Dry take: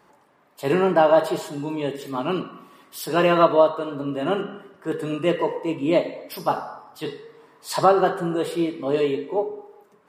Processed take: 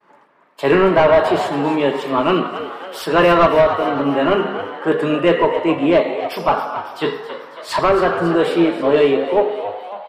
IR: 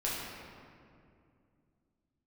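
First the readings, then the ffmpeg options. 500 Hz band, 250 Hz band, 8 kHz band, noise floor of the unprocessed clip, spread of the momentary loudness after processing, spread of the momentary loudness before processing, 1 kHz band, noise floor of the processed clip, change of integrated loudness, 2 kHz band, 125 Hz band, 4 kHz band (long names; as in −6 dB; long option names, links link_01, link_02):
+6.5 dB, +7.0 dB, can't be measured, −59 dBFS, 12 LU, 17 LU, +6.0 dB, −50 dBFS, +6.0 dB, +9.5 dB, +5.0 dB, +7.0 dB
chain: -filter_complex "[0:a]highpass=160,asplit=2[link_01][link_02];[link_02]highpass=frequency=720:poles=1,volume=18dB,asoftclip=type=tanh:threshold=-3dB[link_03];[link_01][link_03]amix=inputs=2:normalize=0,lowpass=frequency=3700:poles=1,volume=-6dB,agate=range=-33dB:threshold=-43dB:ratio=3:detection=peak,bandreject=frequency=760:width=12,dynaudnorm=framelen=100:gausssize=3:maxgain=5dB,bass=frequency=250:gain=8,treble=frequency=4000:gain=-9,asplit=2[link_04][link_05];[link_05]asplit=6[link_06][link_07][link_08][link_09][link_10][link_11];[link_06]adelay=274,afreqshift=97,volume=-12dB[link_12];[link_07]adelay=548,afreqshift=194,volume=-16.9dB[link_13];[link_08]adelay=822,afreqshift=291,volume=-21.8dB[link_14];[link_09]adelay=1096,afreqshift=388,volume=-26.6dB[link_15];[link_10]adelay=1370,afreqshift=485,volume=-31.5dB[link_16];[link_11]adelay=1644,afreqshift=582,volume=-36.4dB[link_17];[link_12][link_13][link_14][link_15][link_16][link_17]amix=inputs=6:normalize=0[link_18];[link_04][link_18]amix=inputs=2:normalize=0,volume=-2.5dB"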